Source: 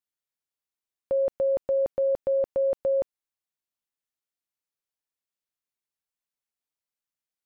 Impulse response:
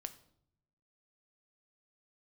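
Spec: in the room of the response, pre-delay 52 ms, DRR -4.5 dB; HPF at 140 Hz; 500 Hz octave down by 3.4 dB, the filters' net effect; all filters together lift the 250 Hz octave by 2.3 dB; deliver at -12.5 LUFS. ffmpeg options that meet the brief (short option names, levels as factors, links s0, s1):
-filter_complex "[0:a]highpass=140,equalizer=f=250:t=o:g=5.5,equalizer=f=500:t=o:g=-4.5,asplit=2[s0][s1];[1:a]atrim=start_sample=2205,adelay=52[s2];[s1][s2]afir=irnorm=-1:irlink=0,volume=2.51[s3];[s0][s3]amix=inputs=2:normalize=0,volume=3.76"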